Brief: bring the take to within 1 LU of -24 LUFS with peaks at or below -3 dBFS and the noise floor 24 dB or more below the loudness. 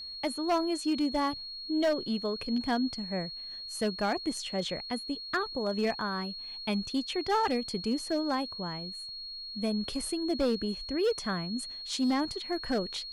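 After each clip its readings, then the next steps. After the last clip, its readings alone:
clipped 1.0%; flat tops at -22.5 dBFS; steady tone 4300 Hz; tone level -39 dBFS; loudness -31.5 LUFS; peak -22.5 dBFS; loudness target -24.0 LUFS
-> clip repair -22.5 dBFS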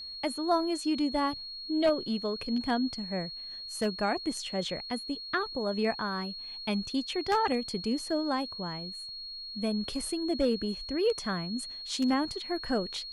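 clipped 0.0%; steady tone 4300 Hz; tone level -39 dBFS
-> notch 4300 Hz, Q 30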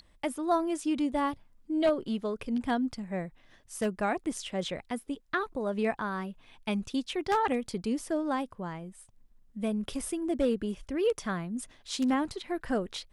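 steady tone none; loudness -32.0 LUFS; peak -13.5 dBFS; loudness target -24.0 LUFS
-> gain +8 dB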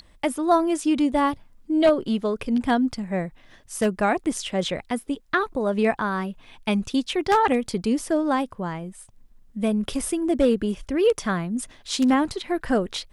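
loudness -24.0 LUFS; peak -5.5 dBFS; noise floor -54 dBFS

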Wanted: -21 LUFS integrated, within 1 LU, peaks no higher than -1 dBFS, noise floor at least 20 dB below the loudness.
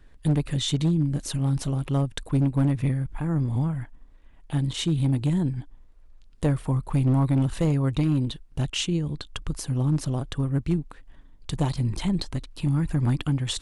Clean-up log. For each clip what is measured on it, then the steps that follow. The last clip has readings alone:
clipped 1.0%; flat tops at -16.0 dBFS; loudness -26.0 LUFS; peak -16.0 dBFS; loudness target -21.0 LUFS
-> clip repair -16 dBFS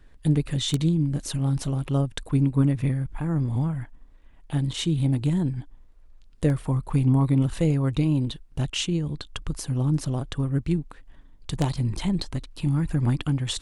clipped 0.0%; loudness -25.5 LUFS; peak -7.0 dBFS; loudness target -21.0 LUFS
-> gain +4.5 dB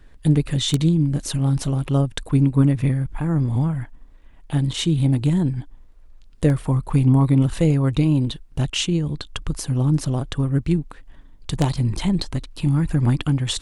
loudness -21.0 LUFS; peak -2.5 dBFS; noise floor -46 dBFS

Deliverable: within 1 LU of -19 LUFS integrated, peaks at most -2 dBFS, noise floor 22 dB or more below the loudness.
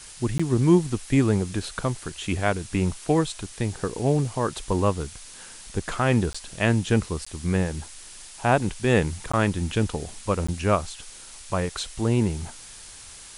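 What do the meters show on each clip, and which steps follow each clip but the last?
dropouts 5; longest dropout 15 ms; noise floor -44 dBFS; noise floor target -47 dBFS; loudness -25.0 LUFS; peak -5.0 dBFS; loudness target -19.0 LUFS
-> interpolate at 0.38/6.33/7.25/9.32/10.47, 15 ms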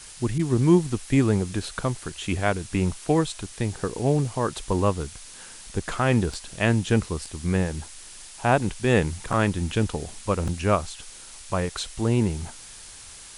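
dropouts 0; noise floor -44 dBFS; noise floor target -47 dBFS
-> noise print and reduce 6 dB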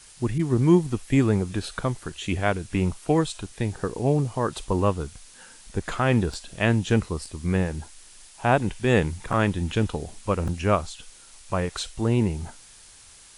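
noise floor -50 dBFS; loudness -25.0 LUFS; peak -5.5 dBFS; loudness target -19.0 LUFS
-> gain +6 dB; limiter -2 dBFS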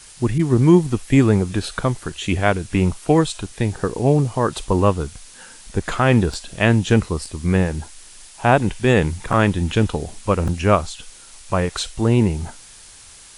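loudness -19.5 LUFS; peak -2.0 dBFS; noise floor -44 dBFS

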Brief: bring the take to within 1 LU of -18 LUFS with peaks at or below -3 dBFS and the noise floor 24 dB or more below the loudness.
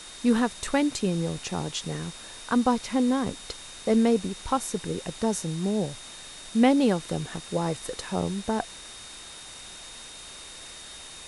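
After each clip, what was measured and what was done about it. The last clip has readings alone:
steady tone 3700 Hz; tone level -46 dBFS; noise floor -44 dBFS; noise floor target -51 dBFS; loudness -27.0 LUFS; peak -7.0 dBFS; loudness target -18.0 LUFS
-> notch 3700 Hz, Q 30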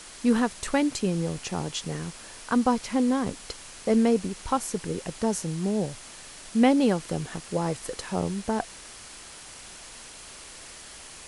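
steady tone none; noise floor -45 dBFS; noise floor target -51 dBFS
-> denoiser 6 dB, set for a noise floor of -45 dBFS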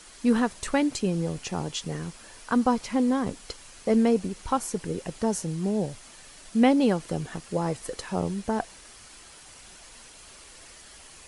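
noise floor -49 dBFS; noise floor target -51 dBFS
-> denoiser 6 dB, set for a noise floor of -49 dBFS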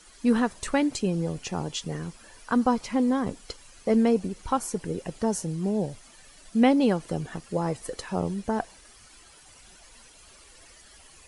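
noise floor -53 dBFS; loudness -27.0 LUFS; peak -7.5 dBFS; loudness target -18.0 LUFS
-> gain +9 dB; limiter -3 dBFS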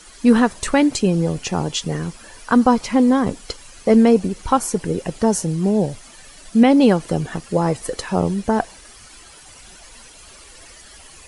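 loudness -18.5 LUFS; peak -3.0 dBFS; noise floor -44 dBFS

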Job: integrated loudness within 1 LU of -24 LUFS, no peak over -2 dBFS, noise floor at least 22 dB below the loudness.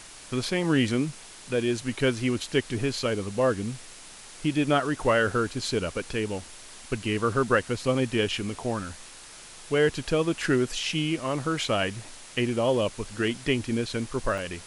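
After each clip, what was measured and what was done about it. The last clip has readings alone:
dropouts 1; longest dropout 3.4 ms; noise floor -46 dBFS; noise floor target -49 dBFS; loudness -27.0 LUFS; peak -10.0 dBFS; loudness target -24.0 LUFS
-> interpolate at 14.38, 3.4 ms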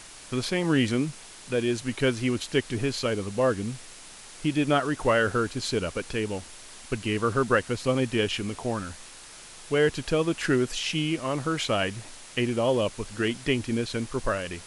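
dropouts 0; noise floor -46 dBFS; noise floor target -49 dBFS
-> denoiser 6 dB, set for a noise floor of -46 dBFS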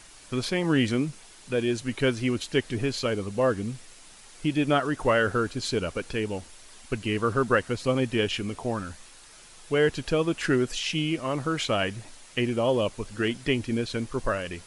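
noise floor -50 dBFS; loudness -27.0 LUFS; peak -10.0 dBFS; loudness target -24.0 LUFS
-> gain +3 dB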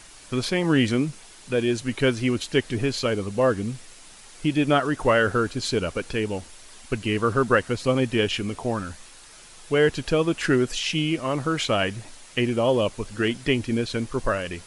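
loudness -24.0 LUFS; peak -7.0 dBFS; noise floor -47 dBFS

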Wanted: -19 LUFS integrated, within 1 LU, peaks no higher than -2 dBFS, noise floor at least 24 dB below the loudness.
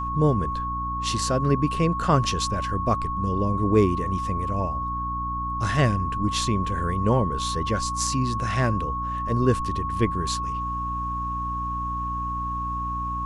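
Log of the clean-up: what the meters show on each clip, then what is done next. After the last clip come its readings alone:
hum 60 Hz; harmonics up to 300 Hz; hum level -30 dBFS; steady tone 1100 Hz; tone level -27 dBFS; loudness -25.0 LUFS; peak -6.0 dBFS; loudness target -19.0 LUFS
-> notches 60/120/180/240/300 Hz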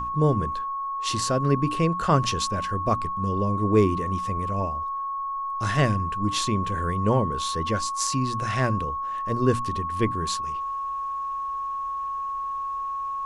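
hum none; steady tone 1100 Hz; tone level -27 dBFS
-> notch 1100 Hz, Q 30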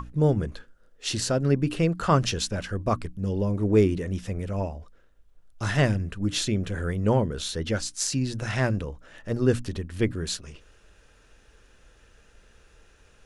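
steady tone none; loudness -26.5 LUFS; peak -7.5 dBFS; loudness target -19.0 LUFS
-> gain +7.5 dB; limiter -2 dBFS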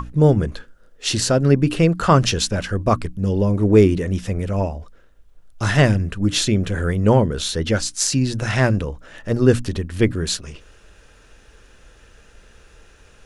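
loudness -19.0 LUFS; peak -2.0 dBFS; noise floor -51 dBFS

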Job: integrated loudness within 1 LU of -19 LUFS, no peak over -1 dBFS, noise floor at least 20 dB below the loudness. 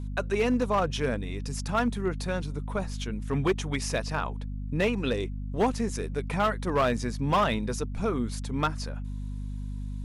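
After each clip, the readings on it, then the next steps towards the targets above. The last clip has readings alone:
clipped 0.8%; flat tops at -18.5 dBFS; hum 50 Hz; harmonics up to 250 Hz; hum level -32 dBFS; loudness -29.5 LUFS; peak -18.5 dBFS; loudness target -19.0 LUFS
-> clip repair -18.5 dBFS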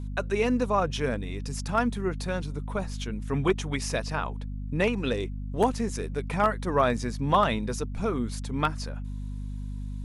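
clipped 0.0%; hum 50 Hz; harmonics up to 250 Hz; hum level -32 dBFS
-> de-hum 50 Hz, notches 5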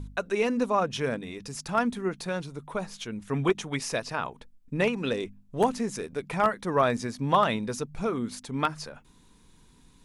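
hum none; loudness -29.0 LUFS; peak -9.0 dBFS; loudness target -19.0 LUFS
-> gain +10 dB; limiter -1 dBFS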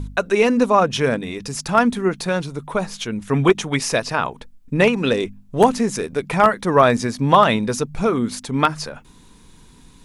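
loudness -19.0 LUFS; peak -1.0 dBFS; noise floor -48 dBFS

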